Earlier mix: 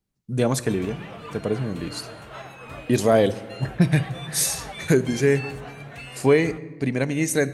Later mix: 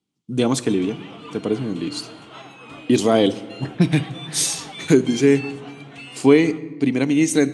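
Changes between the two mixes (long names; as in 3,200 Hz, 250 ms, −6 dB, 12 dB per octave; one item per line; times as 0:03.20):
speech +3.0 dB
master: add loudspeaker in its box 160–9,400 Hz, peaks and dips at 290 Hz +8 dB, 580 Hz −7 dB, 1,700 Hz −7 dB, 3,200 Hz +7 dB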